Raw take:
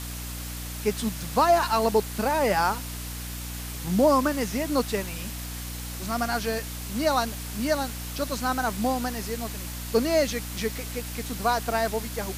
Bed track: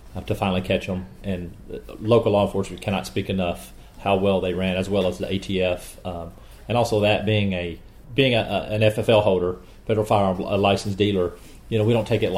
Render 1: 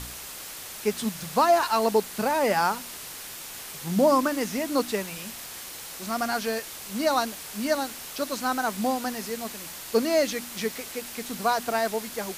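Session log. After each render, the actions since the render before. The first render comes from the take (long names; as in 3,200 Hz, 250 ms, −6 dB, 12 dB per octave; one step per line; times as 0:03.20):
hum removal 60 Hz, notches 5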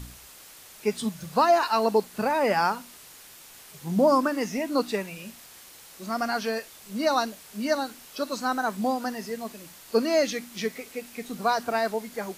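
noise reduction from a noise print 9 dB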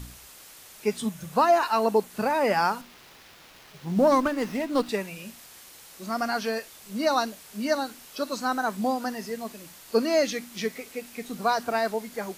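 0:00.98–0:02.10: parametric band 4,600 Hz −5.5 dB 0.46 octaves
0:02.81–0:04.89: windowed peak hold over 5 samples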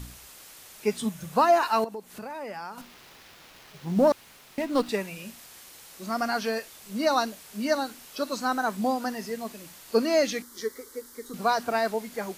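0:01.84–0:02.78: downward compressor 2.5 to 1, threshold −41 dBFS
0:04.12–0:04.58: fill with room tone
0:10.42–0:11.34: phaser with its sweep stopped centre 690 Hz, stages 6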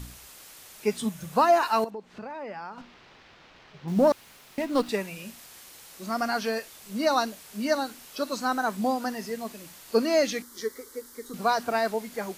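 0:01.90–0:03.88: high-frequency loss of the air 160 metres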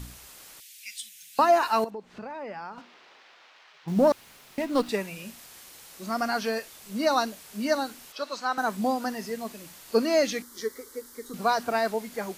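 0:00.60–0:01.39: inverse Chebyshev high-pass filter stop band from 1,100 Hz
0:02.79–0:03.86: high-pass filter 280 Hz → 1,100 Hz
0:08.12–0:08.58: three-way crossover with the lows and the highs turned down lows −14 dB, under 490 Hz, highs −14 dB, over 6,200 Hz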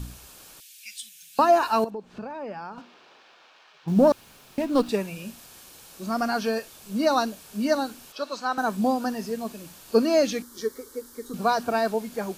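low-shelf EQ 480 Hz +5.5 dB
notch filter 2,000 Hz, Q 7.2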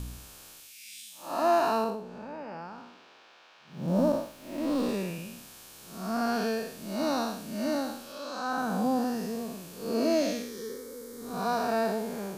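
spectrum smeared in time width 219 ms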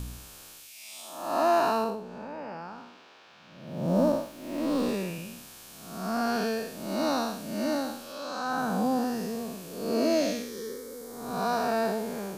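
peak hold with a rise ahead of every peak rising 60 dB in 0.81 s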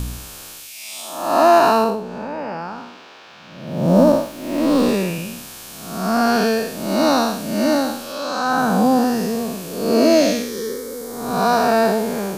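level +11.5 dB
brickwall limiter −3 dBFS, peak gain reduction 1 dB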